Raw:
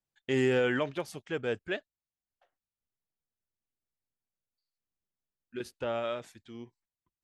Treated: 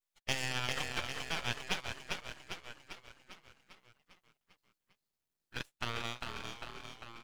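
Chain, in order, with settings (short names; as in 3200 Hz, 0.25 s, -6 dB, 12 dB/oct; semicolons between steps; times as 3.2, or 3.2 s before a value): spectral gate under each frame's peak -15 dB weak; dynamic EQ 5800 Hz, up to +7 dB, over -58 dBFS, Q 0.99; in parallel at +2 dB: compressor, threshold -48 dBFS, peak gain reduction 15.5 dB; on the sum: transient shaper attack +7 dB, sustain -10 dB; on a send: frequency-shifting echo 0.399 s, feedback 58%, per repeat -39 Hz, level -3.5 dB; on the sum: half-wave rectifier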